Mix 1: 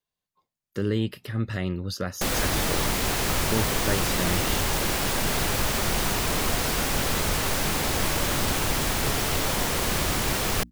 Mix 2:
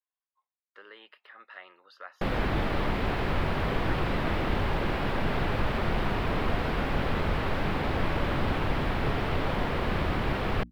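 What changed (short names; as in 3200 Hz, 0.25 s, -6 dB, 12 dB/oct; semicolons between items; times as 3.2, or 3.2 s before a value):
speech: add ladder high-pass 720 Hz, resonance 25%; master: add air absorption 430 m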